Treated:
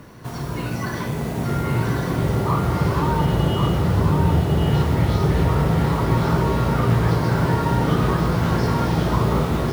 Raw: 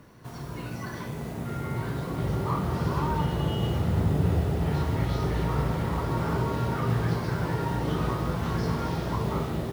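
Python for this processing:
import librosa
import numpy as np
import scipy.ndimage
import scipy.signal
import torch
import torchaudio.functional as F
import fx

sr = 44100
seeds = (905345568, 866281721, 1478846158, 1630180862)

p1 = fx.rider(x, sr, range_db=5, speed_s=0.5)
p2 = x + F.gain(torch.from_numpy(p1), -1.5).numpy()
p3 = p2 + 10.0 ** (-4.0 / 20.0) * np.pad(p2, (int(1097 * sr / 1000.0), 0))[:len(p2)]
y = F.gain(torch.from_numpy(p3), 1.5).numpy()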